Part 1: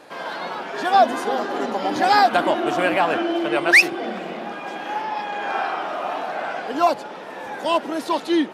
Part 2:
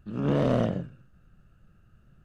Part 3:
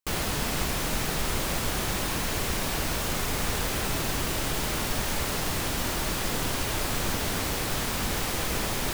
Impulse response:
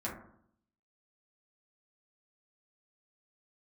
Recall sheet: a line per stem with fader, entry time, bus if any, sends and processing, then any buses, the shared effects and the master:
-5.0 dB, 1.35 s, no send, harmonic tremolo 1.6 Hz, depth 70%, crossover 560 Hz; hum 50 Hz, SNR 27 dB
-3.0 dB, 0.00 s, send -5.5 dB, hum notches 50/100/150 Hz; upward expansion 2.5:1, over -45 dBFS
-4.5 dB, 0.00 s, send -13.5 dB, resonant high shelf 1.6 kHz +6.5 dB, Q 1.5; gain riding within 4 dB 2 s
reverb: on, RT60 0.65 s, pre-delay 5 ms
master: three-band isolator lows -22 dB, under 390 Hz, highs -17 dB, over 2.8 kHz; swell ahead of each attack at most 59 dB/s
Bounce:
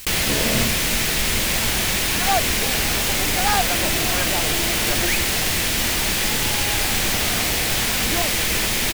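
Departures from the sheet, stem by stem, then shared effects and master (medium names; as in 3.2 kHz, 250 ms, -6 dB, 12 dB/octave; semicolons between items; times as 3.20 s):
stem 3 -4.5 dB -> +2.5 dB; master: missing three-band isolator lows -22 dB, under 390 Hz, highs -17 dB, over 2.8 kHz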